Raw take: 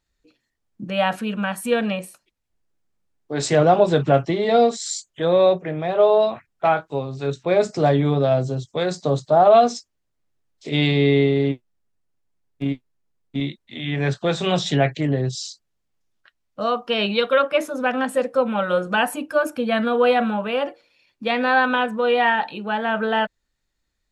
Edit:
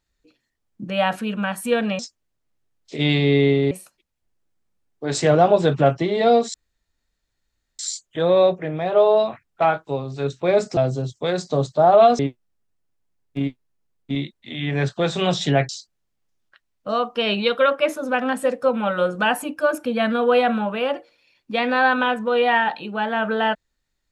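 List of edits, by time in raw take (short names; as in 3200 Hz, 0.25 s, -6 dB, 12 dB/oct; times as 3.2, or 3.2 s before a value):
4.82 insert room tone 1.25 s
7.8–8.3 cut
9.72–11.44 move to 1.99
14.94–15.41 cut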